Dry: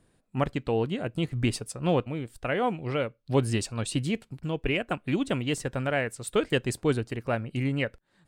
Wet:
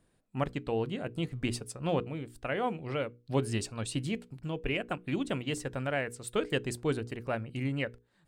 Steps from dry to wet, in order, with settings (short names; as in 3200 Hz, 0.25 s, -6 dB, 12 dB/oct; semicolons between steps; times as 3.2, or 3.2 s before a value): notches 60/120/180/240/300/360/420/480 Hz; gain -4.5 dB